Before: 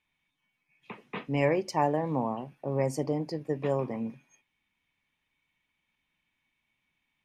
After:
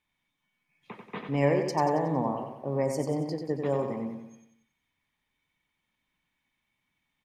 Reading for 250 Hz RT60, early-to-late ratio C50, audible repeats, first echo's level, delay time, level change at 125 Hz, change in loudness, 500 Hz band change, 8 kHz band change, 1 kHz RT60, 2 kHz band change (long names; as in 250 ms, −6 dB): no reverb audible, no reverb audible, 5, −6.0 dB, 92 ms, +1.0 dB, +1.5 dB, +1.5 dB, +1.0 dB, no reverb audible, −1.0 dB